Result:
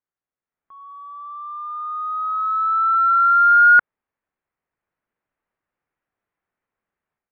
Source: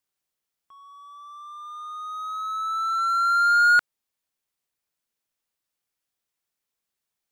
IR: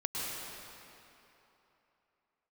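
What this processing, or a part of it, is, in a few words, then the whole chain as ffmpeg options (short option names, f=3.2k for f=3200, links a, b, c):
action camera in a waterproof case: -af "lowpass=f=2k:w=0.5412,lowpass=f=2k:w=1.3066,dynaudnorm=f=420:g=3:m=12.5dB,volume=-4dB" -ar 32000 -c:a aac -b:a 48k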